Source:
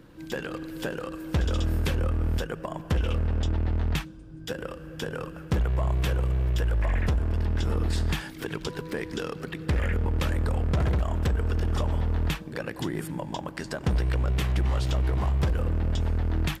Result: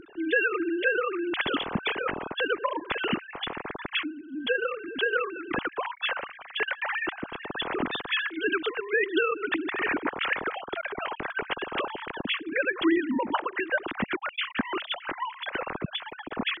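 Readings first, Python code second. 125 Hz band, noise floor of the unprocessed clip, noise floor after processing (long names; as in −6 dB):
−21.0 dB, −42 dBFS, −48 dBFS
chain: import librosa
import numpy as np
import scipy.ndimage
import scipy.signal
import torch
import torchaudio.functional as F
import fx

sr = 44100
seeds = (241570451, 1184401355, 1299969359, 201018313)

y = fx.sine_speech(x, sr)
y = fx.peak_eq(y, sr, hz=570.0, db=-12.0, octaves=2.1)
y = F.gain(torch.from_numpy(y), 3.5).numpy()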